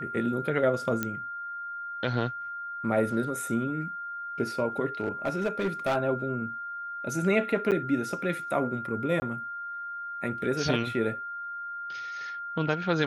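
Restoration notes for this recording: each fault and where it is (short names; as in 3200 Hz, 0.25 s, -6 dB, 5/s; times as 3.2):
tone 1400 Hz -34 dBFS
1.03 pop -14 dBFS
5–5.97 clipped -22.5 dBFS
7.71–7.72 gap 8.1 ms
9.2–9.22 gap 20 ms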